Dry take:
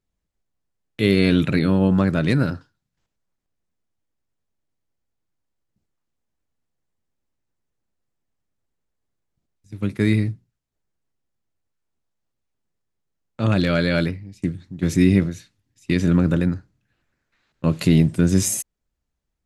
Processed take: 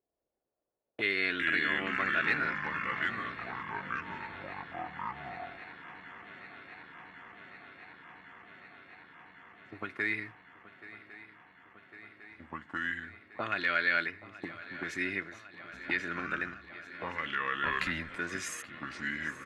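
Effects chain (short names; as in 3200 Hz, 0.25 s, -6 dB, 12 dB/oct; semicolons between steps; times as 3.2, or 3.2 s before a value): comb 2.8 ms, depth 42%; in parallel at +3 dB: compressor, threshold -26 dBFS, peak gain reduction 14 dB; on the sum: echoes that change speed 0.149 s, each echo -4 st, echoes 3; auto-wah 550–1800 Hz, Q 2.7, up, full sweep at -15 dBFS; on a send: swung echo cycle 1.103 s, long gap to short 3:1, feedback 79%, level -18 dB; 17.65–18.16 on the sum: frequency shift -78 Hz; gain -1.5 dB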